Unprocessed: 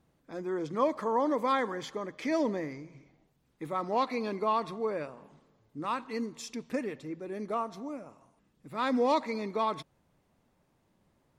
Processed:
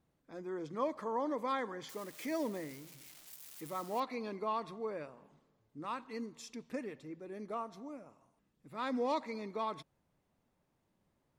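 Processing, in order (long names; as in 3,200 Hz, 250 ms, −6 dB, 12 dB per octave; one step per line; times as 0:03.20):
0:01.89–0:04.00: spike at every zero crossing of −33 dBFS
level −7.5 dB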